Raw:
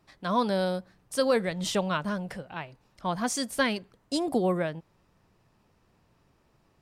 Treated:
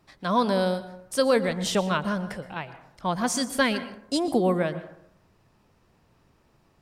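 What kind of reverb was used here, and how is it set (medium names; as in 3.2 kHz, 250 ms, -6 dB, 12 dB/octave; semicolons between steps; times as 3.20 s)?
plate-style reverb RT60 0.72 s, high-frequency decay 0.45×, pre-delay 105 ms, DRR 13 dB; trim +3 dB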